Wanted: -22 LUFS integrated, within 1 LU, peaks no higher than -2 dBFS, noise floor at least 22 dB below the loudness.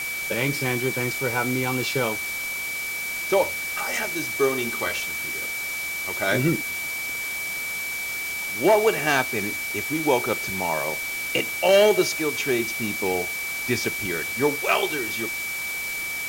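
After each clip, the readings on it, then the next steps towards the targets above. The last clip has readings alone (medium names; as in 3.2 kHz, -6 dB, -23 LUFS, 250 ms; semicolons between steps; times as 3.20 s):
steady tone 2.3 kHz; tone level -28 dBFS; noise floor -30 dBFS; noise floor target -46 dBFS; loudness -24.0 LUFS; peak level -8.5 dBFS; loudness target -22.0 LUFS
-> band-stop 2.3 kHz, Q 30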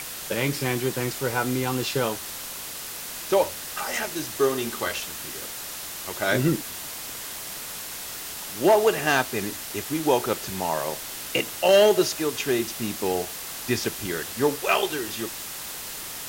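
steady tone not found; noise floor -36 dBFS; noise floor target -48 dBFS
-> noise reduction 12 dB, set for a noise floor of -36 dBFS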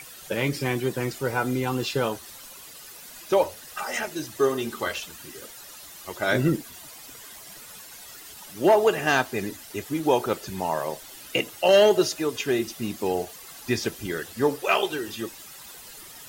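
noise floor -44 dBFS; noise floor target -48 dBFS
-> noise reduction 6 dB, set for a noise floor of -44 dBFS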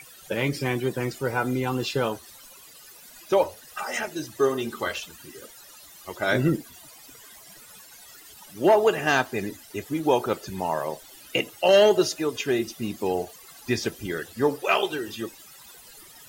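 noise floor -49 dBFS; loudness -25.5 LUFS; peak level -8.5 dBFS; loudness target -22.0 LUFS
-> trim +3.5 dB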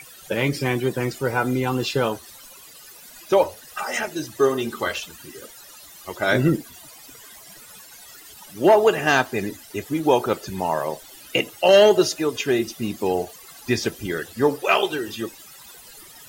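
loudness -22.0 LUFS; peak level -5.0 dBFS; noise floor -45 dBFS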